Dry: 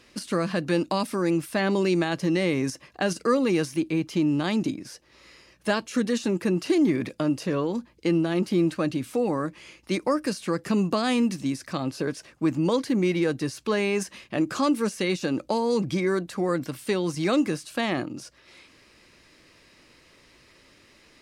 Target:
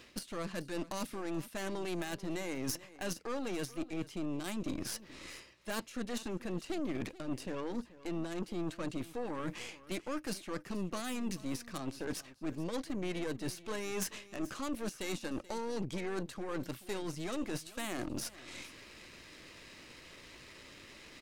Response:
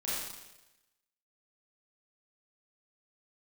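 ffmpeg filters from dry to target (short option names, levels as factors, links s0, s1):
-filter_complex "[0:a]highshelf=f=5800:t=q:w=1.5:g=-12,areverse,acompressor=threshold=0.0112:ratio=6,areverse,aeval=exprs='0.0501*(cos(1*acos(clip(val(0)/0.0501,-1,1)))-cos(1*PI/2))+0.00562*(cos(8*acos(clip(val(0)/0.0501,-1,1)))-cos(8*PI/2))':c=same,aexciter=amount=5.3:drive=2.4:freq=6400,aeval=exprs='0.0447*(abs(mod(val(0)/0.0447+3,4)-2)-1)':c=same,asplit=2[s0][s1];[s1]aecho=0:1:432:0.126[s2];[s0][s2]amix=inputs=2:normalize=0,volume=1.19"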